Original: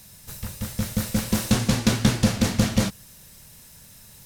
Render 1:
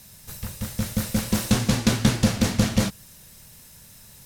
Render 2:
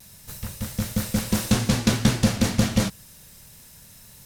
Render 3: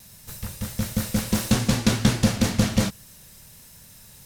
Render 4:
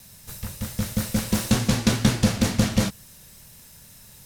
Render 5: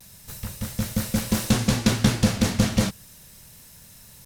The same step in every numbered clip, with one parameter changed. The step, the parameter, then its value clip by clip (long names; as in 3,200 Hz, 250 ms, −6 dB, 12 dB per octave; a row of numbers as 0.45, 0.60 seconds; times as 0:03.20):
pitch vibrato, speed: 6.4, 0.54, 1.4, 2.1, 0.32 Hertz